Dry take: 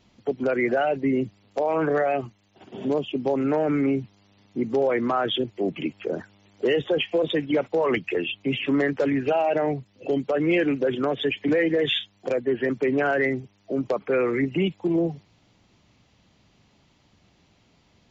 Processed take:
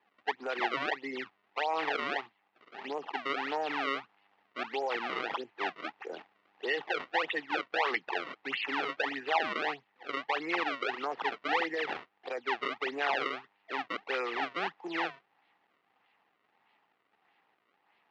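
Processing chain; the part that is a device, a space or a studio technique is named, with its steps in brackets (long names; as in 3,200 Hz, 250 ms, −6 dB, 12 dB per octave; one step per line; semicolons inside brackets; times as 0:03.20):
circuit-bent sampling toy (sample-and-hold swept by an LFO 30×, swing 160% 1.6 Hz; loudspeaker in its box 520–4,000 Hz, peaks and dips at 580 Hz −6 dB, 830 Hz +9 dB, 1,200 Hz +4 dB, 1,900 Hz +8 dB, 2,700 Hz +5 dB)
level −8 dB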